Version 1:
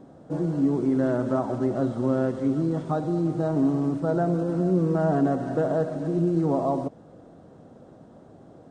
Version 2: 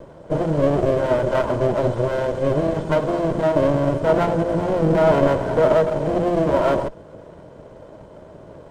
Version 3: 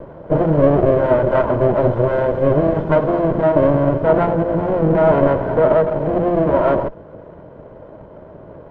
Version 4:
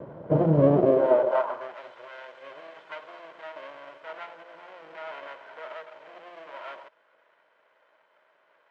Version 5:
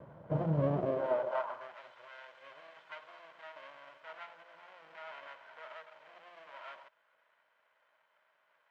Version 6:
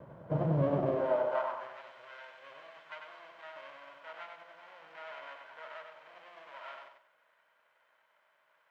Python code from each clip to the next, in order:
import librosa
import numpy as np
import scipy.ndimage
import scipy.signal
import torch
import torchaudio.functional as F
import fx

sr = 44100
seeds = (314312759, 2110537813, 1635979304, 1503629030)

y1 = fx.lower_of_two(x, sr, delay_ms=2.0)
y1 = fx.small_body(y1, sr, hz=(240.0, 630.0, 3100.0), ring_ms=25, db=8)
y1 = F.gain(torch.from_numpy(y1), 6.5).numpy()
y2 = scipy.signal.sosfilt(scipy.signal.butter(2, 1900.0, 'lowpass', fs=sr, output='sos'), y1)
y2 = fx.rider(y2, sr, range_db=4, speed_s=2.0)
y2 = F.gain(torch.from_numpy(y2), 3.5).numpy()
y3 = fx.dynamic_eq(y2, sr, hz=1700.0, q=1.2, threshold_db=-32.0, ratio=4.0, max_db=-5)
y3 = fx.filter_sweep_highpass(y3, sr, from_hz=120.0, to_hz=2100.0, start_s=0.61, end_s=1.79, q=1.2)
y3 = F.gain(torch.from_numpy(y3), -6.5).numpy()
y4 = fx.peak_eq(y3, sr, hz=370.0, db=-10.5, octaves=1.5)
y4 = F.gain(torch.from_numpy(y4), -6.0).numpy()
y5 = fx.echo_feedback(y4, sr, ms=96, feedback_pct=30, wet_db=-5.5)
y5 = F.gain(torch.from_numpy(y5), 1.0).numpy()